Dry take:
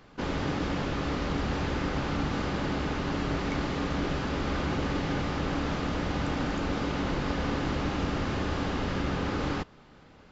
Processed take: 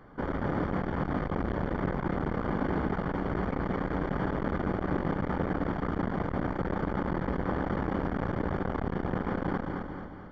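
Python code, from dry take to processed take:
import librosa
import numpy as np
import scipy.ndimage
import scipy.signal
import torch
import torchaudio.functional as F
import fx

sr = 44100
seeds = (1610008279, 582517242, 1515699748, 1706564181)

p1 = scipy.signal.savgol_filter(x, 41, 4, mode='constant')
p2 = p1 + fx.echo_feedback(p1, sr, ms=218, feedback_pct=48, wet_db=-5.0, dry=0)
p3 = fx.transformer_sat(p2, sr, knee_hz=440.0)
y = F.gain(torch.from_numpy(p3), 2.5).numpy()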